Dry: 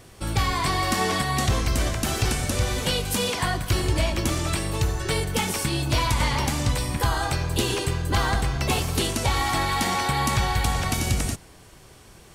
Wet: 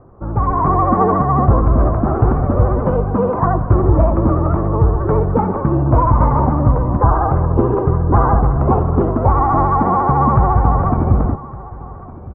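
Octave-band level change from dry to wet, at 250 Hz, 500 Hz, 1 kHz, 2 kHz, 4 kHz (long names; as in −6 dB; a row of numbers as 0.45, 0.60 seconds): +11.5 dB, +12.0 dB, +11.0 dB, −7.0 dB, below −35 dB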